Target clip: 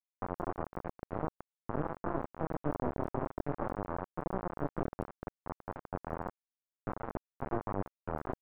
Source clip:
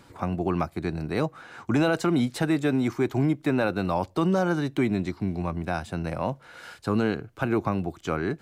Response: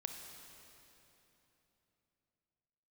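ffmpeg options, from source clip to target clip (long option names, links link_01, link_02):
-filter_complex "[0:a]lowshelf=frequency=270:gain=-8,bandreject=frequency=260.2:width_type=h:width=4,bandreject=frequency=520.4:width_type=h:width=4,bandreject=frequency=780.6:width_type=h:width=4,bandreject=frequency=1040.8:width_type=h:width=4,adynamicequalizer=threshold=0.00178:dfrequency=110:dqfactor=6:tfrequency=110:tqfactor=6:attack=5:release=100:ratio=0.375:range=2:mode=cutabove:tftype=bell,aeval=exprs='val(0)+0.00316*(sin(2*PI*50*n/s)+sin(2*PI*2*50*n/s)/2+sin(2*PI*3*50*n/s)/3+sin(2*PI*4*50*n/s)/4+sin(2*PI*5*50*n/s)/5)':channel_layout=same,acompressor=threshold=-34dB:ratio=8,agate=range=-33dB:threshold=-45dB:ratio=3:detection=peak[link_01];[1:a]atrim=start_sample=2205,asetrate=74970,aresample=44100[link_02];[link_01][link_02]afir=irnorm=-1:irlink=0,flanger=delay=20:depth=7.7:speed=0.53,aecho=1:1:229|458|687:0.188|0.0622|0.0205,aresample=11025,acrusher=bits=4:dc=4:mix=0:aa=0.000001,aresample=44100,lowpass=frequency=1200:width=0.5412,lowpass=frequency=1200:width=1.3066,volume=14dB"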